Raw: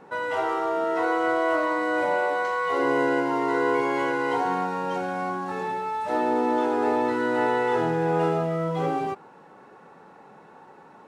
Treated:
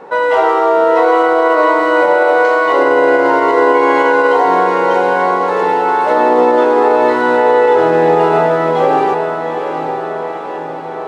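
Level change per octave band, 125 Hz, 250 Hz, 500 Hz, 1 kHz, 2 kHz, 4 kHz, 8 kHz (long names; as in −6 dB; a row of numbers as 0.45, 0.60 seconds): +4.5 dB, +9.0 dB, +15.0 dB, +14.0 dB, +12.5 dB, +11.5 dB, can't be measured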